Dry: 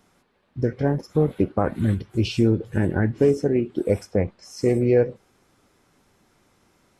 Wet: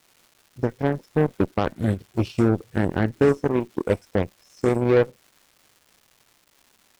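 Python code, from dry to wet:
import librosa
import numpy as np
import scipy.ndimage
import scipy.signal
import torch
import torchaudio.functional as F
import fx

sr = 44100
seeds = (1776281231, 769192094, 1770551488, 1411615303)

y = fx.cheby_harmonics(x, sr, harmonics=(7,), levels_db=(-19,), full_scale_db=-7.0)
y = fx.dmg_crackle(y, sr, seeds[0], per_s=500.0, level_db=-44.0)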